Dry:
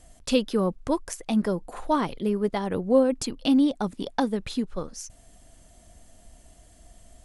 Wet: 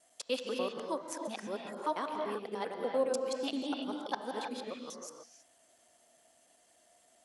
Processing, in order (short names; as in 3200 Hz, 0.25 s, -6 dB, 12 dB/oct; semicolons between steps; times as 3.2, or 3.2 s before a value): local time reversal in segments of 98 ms; HPF 460 Hz 12 dB/oct; on a send: reverb, pre-delay 3 ms, DRR 2 dB; on the sum: gain -8 dB